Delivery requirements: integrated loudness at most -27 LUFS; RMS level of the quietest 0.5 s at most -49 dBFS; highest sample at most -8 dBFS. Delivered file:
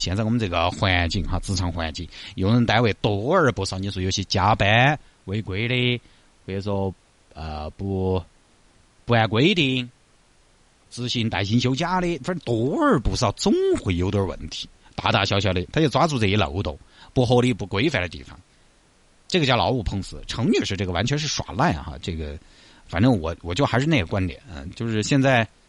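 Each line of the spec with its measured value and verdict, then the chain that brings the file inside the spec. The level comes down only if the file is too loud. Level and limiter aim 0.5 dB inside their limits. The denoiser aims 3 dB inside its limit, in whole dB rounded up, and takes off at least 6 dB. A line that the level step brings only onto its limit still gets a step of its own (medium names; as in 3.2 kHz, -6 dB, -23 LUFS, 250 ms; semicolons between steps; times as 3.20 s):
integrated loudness -22.5 LUFS: fail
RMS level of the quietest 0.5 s -57 dBFS: pass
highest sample -5.5 dBFS: fail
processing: trim -5 dB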